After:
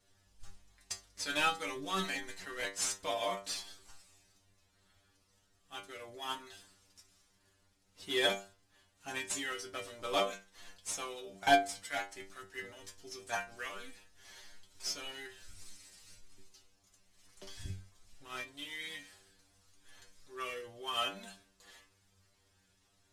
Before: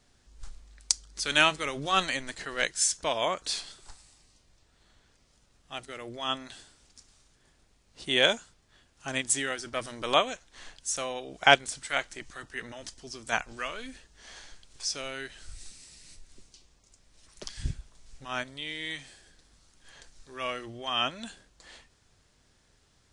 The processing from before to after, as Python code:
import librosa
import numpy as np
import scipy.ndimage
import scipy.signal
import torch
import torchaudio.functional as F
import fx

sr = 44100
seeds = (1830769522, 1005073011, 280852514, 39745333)

y = fx.cvsd(x, sr, bps=64000)
y = fx.stiff_resonator(y, sr, f0_hz=95.0, decay_s=0.36, stiffness=0.002)
y = y * 10.0 ** (3.5 / 20.0)